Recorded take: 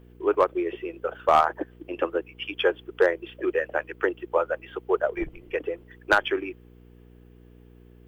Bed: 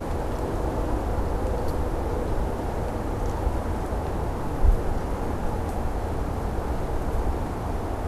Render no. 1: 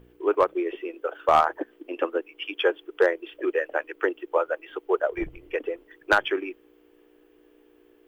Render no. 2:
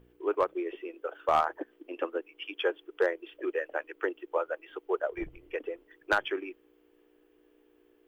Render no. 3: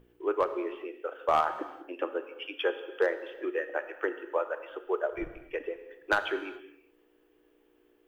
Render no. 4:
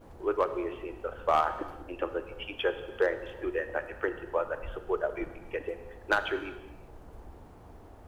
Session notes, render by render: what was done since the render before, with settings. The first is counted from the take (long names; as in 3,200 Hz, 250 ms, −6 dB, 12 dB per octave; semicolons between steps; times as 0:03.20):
hum removal 60 Hz, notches 4
level −6.5 dB
reverb whose tail is shaped and stops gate 440 ms falling, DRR 9.5 dB
mix in bed −22.5 dB